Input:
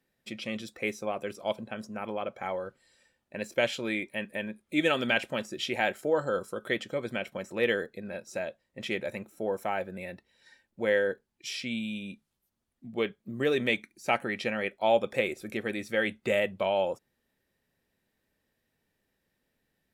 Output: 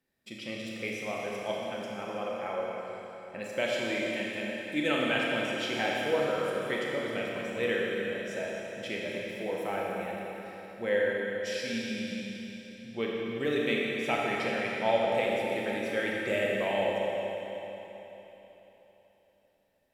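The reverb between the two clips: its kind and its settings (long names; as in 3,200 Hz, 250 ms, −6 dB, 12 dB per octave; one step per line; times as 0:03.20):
four-comb reverb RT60 3.7 s, combs from 27 ms, DRR −3.5 dB
level −5 dB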